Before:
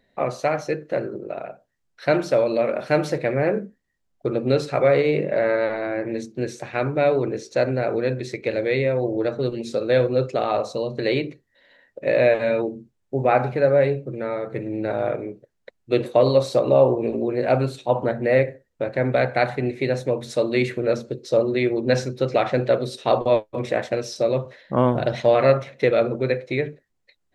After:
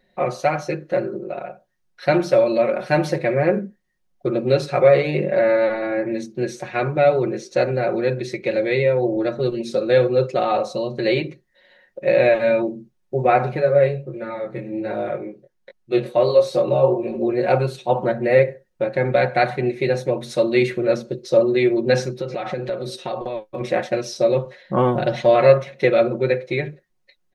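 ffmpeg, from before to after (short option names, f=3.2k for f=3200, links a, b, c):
-filter_complex "[0:a]asplit=3[a][b][c];[a]afade=t=out:st=13.59:d=0.02[d];[b]flanger=delay=18.5:depth=4.5:speed=1.4,afade=t=in:st=13.59:d=0.02,afade=t=out:st=17.19:d=0.02[e];[c]afade=t=in:st=17.19:d=0.02[f];[d][e][f]amix=inputs=3:normalize=0,asettb=1/sr,asplit=3[g][h][i];[g]atrim=end=22.104[j];[h]atrim=start=22.1:end=23.61,asetpts=PTS-STARTPTS,afade=t=in:d=0.004:c=qsin,afade=t=out:st=1.506:d=0.004:c=qsin,acompressor=threshold=-25dB:ratio=6:attack=3.2:release=140:knee=1:detection=peak[k];[i]atrim=start=23.606[l];[j][k]acrossfade=d=0.004:c1=hsin:c2=qsin[m];[m][l]acrossfade=d=0.004:c1=qsin:c2=hsin,bandreject=f=7.5k:w=9.8,aecho=1:1:5.5:0.81"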